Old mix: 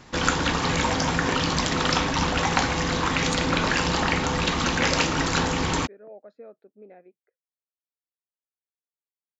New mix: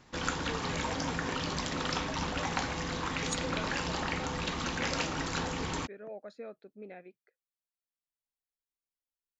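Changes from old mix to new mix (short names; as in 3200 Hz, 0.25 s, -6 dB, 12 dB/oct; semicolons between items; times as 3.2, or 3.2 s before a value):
speech: remove band-pass 490 Hz, Q 0.6; first sound -10.5 dB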